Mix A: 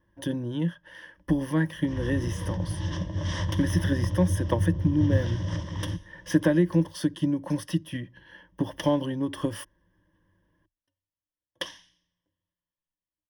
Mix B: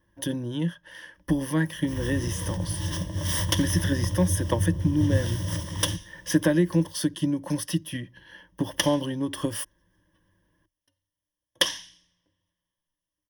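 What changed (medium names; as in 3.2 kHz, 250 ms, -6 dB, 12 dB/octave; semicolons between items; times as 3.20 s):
first sound: remove low-pass 6.4 kHz 24 dB/octave; second sound +8.0 dB; master: add treble shelf 4 kHz +11 dB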